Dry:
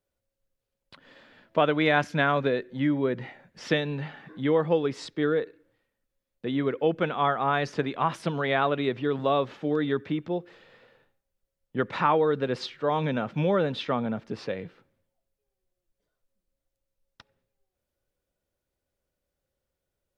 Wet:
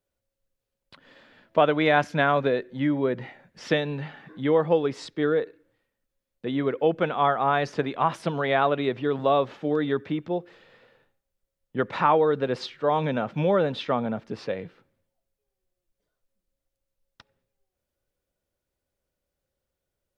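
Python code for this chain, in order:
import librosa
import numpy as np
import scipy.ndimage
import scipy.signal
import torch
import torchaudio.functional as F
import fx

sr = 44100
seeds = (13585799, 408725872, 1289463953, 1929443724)

y = fx.dynamic_eq(x, sr, hz=700.0, q=1.1, threshold_db=-37.0, ratio=4.0, max_db=4)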